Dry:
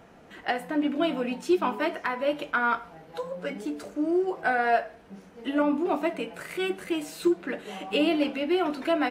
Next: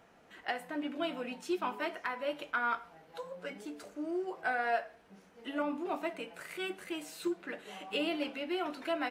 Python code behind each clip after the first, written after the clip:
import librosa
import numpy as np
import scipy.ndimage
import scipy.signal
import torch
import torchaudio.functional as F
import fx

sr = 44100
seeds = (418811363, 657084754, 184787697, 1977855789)

y = fx.low_shelf(x, sr, hz=500.0, db=-7.5)
y = y * librosa.db_to_amplitude(-6.0)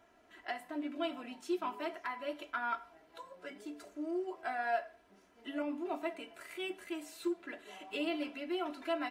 y = x + 0.71 * np.pad(x, (int(3.0 * sr / 1000.0), 0))[:len(x)]
y = y * librosa.db_to_amplitude(-5.5)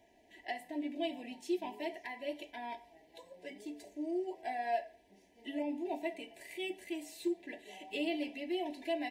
y = scipy.signal.sosfilt(scipy.signal.cheby1(3, 1.0, [900.0, 1800.0], 'bandstop', fs=sr, output='sos'), x)
y = y * librosa.db_to_amplitude(1.0)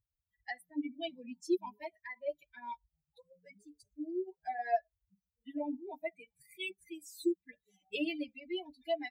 y = fx.bin_expand(x, sr, power=3.0)
y = y * librosa.db_to_amplitude(6.5)